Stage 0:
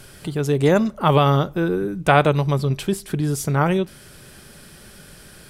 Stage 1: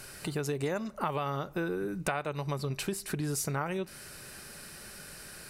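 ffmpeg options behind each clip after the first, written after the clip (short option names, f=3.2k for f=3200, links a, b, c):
-af "lowshelf=f=490:g=-8.5,bandreject=f=3.3k:w=5.8,acompressor=threshold=-29dB:ratio=10"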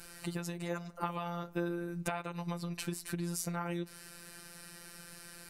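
-af "afftfilt=real='hypot(re,im)*cos(PI*b)':imag='0':win_size=1024:overlap=0.75,volume=-1dB"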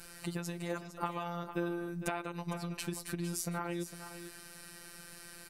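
-af "aecho=1:1:456:0.266"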